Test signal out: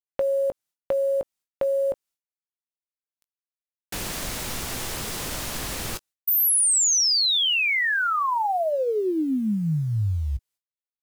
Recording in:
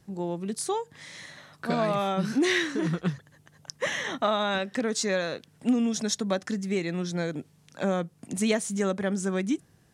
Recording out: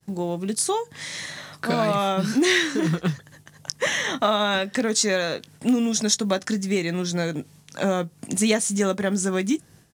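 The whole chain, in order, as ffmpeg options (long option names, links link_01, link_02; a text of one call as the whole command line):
ffmpeg -i in.wav -filter_complex "[0:a]agate=range=-33dB:threshold=-53dB:ratio=3:detection=peak,equalizer=frequency=9100:width=0.32:gain=5,asplit=2[link_01][link_02];[link_02]acompressor=threshold=-39dB:ratio=5,volume=2dB[link_03];[link_01][link_03]amix=inputs=2:normalize=0,acrusher=bits=9:mode=log:mix=0:aa=0.000001,asplit=2[link_04][link_05];[link_05]adelay=19,volume=-14dB[link_06];[link_04][link_06]amix=inputs=2:normalize=0,volume=2dB" out.wav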